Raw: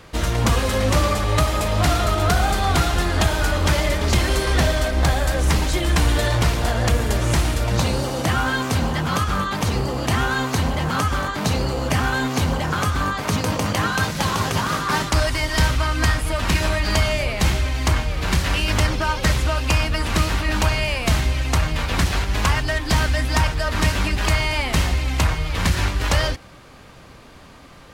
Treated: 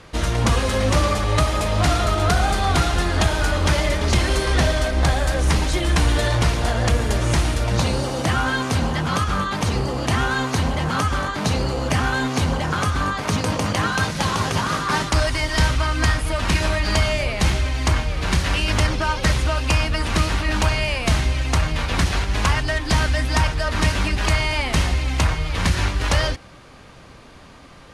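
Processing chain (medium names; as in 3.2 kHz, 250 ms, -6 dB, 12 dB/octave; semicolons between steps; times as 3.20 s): low-pass 11 kHz 24 dB/octave; band-stop 7.6 kHz, Q 18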